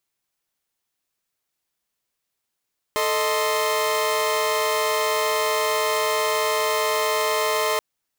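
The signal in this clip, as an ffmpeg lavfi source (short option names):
-f lavfi -i "aevalsrc='0.0794*((2*mod(440*t,1)-1)+(2*mod(622.25*t,1)-1)+(2*mod(1046.5*t,1)-1))':d=4.83:s=44100"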